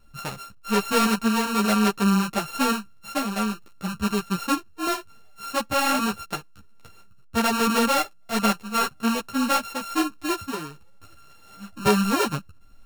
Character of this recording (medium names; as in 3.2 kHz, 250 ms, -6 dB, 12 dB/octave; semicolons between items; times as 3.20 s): a buzz of ramps at a fixed pitch in blocks of 32 samples; tremolo triangle 1.2 Hz, depth 35%; a shimmering, thickened sound